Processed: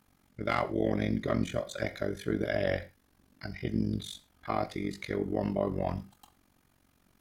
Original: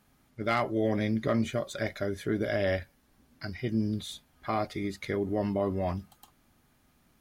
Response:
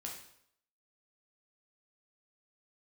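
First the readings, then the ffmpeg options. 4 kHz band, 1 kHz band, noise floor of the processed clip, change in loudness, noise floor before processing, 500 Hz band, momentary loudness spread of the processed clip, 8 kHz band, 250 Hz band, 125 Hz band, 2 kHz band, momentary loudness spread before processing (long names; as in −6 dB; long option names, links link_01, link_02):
−2.0 dB, −1.5 dB, −69 dBFS, −1.5 dB, −67 dBFS, −1.5 dB, 12 LU, −2.0 dB, −2.0 dB, −1.5 dB, −1.5 dB, 10 LU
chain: -filter_complex "[0:a]tremolo=f=46:d=0.919,asplit=2[link_01][link_02];[1:a]atrim=start_sample=2205,afade=type=out:start_time=0.17:duration=0.01,atrim=end_sample=7938[link_03];[link_02][link_03]afir=irnorm=-1:irlink=0,volume=-6.5dB[link_04];[link_01][link_04]amix=inputs=2:normalize=0"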